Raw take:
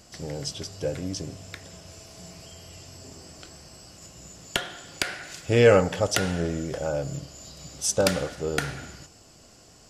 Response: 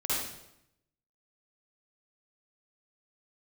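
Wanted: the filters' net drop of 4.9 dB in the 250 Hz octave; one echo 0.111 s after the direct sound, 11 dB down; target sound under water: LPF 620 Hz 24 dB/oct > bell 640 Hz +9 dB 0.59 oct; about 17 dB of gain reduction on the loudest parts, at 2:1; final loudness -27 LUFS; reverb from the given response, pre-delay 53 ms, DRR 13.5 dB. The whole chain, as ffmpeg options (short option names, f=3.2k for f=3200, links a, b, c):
-filter_complex "[0:a]equalizer=f=250:t=o:g=-8,acompressor=threshold=-46dB:ratio=2,aecho=1:1:111:0.282,asplit=2[a][b];[1:a]atrim=start_sample=2205,adelay=53[c];[b][c]afir=irnorm=-1:irlink=0,volume=-21.5dB[d];[a][d]amix=inputs=2:normalize=0,lowpass=f=620:w=0.5412,lowpass=f=620:w=1.3066,equalizer=f=640:t=o:w=0.59:g=9,volume=14dB"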